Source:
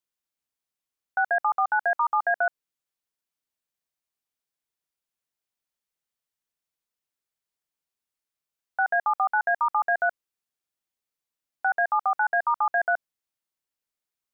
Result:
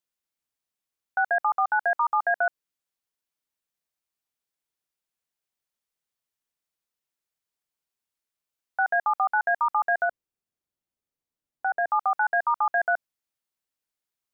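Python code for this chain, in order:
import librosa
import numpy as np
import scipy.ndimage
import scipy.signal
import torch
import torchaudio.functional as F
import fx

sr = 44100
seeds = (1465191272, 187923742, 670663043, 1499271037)

y = fx.tilt_shelf(x, sr, db=6.0, hz=650.0, at=(10.04, 11.87), fade=0.02)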